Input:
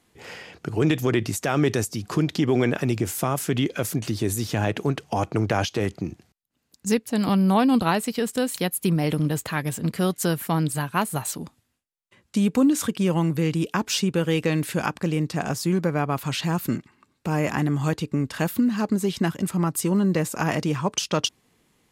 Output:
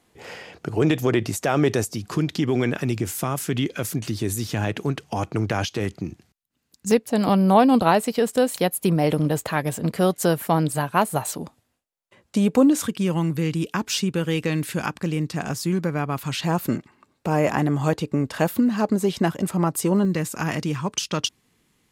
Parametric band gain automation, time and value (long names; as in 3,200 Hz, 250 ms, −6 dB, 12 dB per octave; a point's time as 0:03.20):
parametric band 620 Hz 1.4 octaves
+4 dB
from 0:01.98 −3 dB
from 0:06.91 +8 dB
from 0:12.81 −3 dB
from 0:16.44 +7 dB
from 0:20.05 −5 dB